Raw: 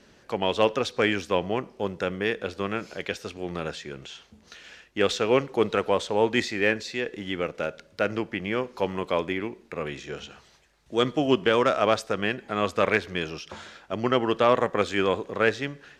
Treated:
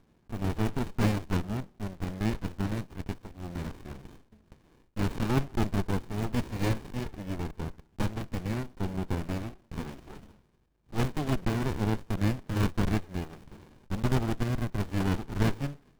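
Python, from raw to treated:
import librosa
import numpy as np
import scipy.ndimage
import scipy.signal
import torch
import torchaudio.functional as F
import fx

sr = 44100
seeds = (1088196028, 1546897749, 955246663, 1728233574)

y = fx.block_float(x, sr, bits=3)
y = fx.rotary(y, sr, hz=0.7)
y = fx.running_max(y, sr, window=65)
y = y * 10.0 ** (-2.5 / 20.0)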